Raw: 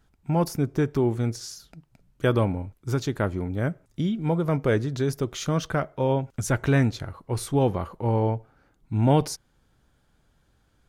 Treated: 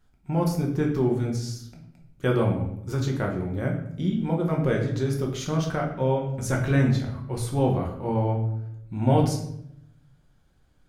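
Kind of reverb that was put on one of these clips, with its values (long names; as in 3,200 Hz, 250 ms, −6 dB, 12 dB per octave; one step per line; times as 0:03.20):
rectangular room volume 170 cubic metres, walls mixed, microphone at 1 metre
level −4.5 dB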